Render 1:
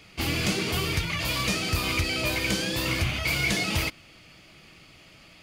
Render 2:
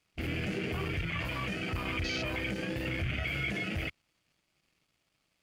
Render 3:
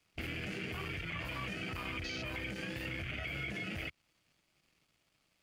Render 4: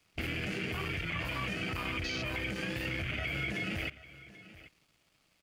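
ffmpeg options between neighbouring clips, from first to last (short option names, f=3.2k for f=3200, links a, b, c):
-af "alimiter=limit=-23dB:level=0:latency=1:release=24,aeval=exprs='sgn(val(0))*max(abs(val(0))-0.00251,0)':c=same,afwtdn=0.02"
-filter_complex "[0:a]acrossover=split=270|980[a][b][c];[a]acompressor=threshold=-45dB:ratio=4[d];[b]acompressor=threshold=-50dB:ratio=4[e];[c]acompressor=threshold=-41dB:ratio=4[f];[d][e][f]amix=inputs=3:normalize=0,volume=1dB"
-af "aecho=1:1:785:0.133,volume=4.5dB"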